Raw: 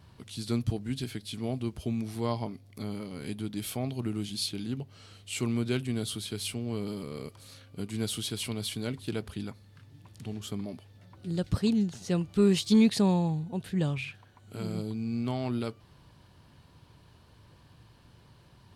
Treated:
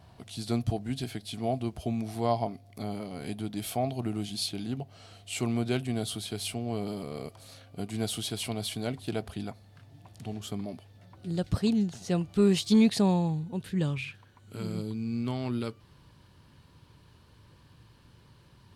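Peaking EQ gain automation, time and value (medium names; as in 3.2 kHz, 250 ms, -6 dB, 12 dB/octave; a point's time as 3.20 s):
peaking EQ 700 Hz 0.35 oct
10.09 s +14 dB
10.70 s +5.5 dB
13.03 s +5.5 dB
13.44 s -6 dB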